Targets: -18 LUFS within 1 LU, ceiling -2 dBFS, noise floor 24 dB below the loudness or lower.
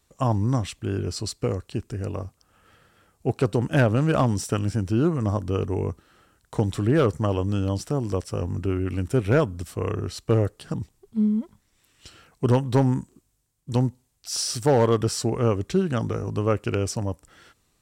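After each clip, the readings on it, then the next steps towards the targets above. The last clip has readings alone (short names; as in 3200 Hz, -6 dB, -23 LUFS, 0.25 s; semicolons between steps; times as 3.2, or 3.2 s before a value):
clipped 0.3%; flat tops at -12.0 dBFS; loudness -25.0 LUFS; peak -12.0 dBFS; loudness target -18.0 LUFS
-> clip repair -12 dBFS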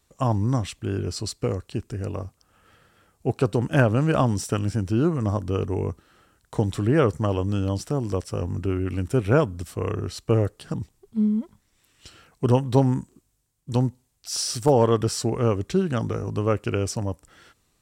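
clipped 0.0%; loudness -24.5 LUFS; peak -4.5 dBFS; loudness target -18.0 LUFS
-> gain +6.5 dB; limiter -2 dBFS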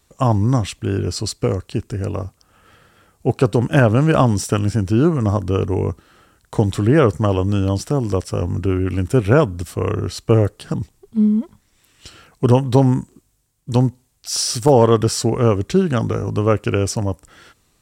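loudness -18.5 LUFS; peak -2.0 dBFS; noise floor -62 dBFS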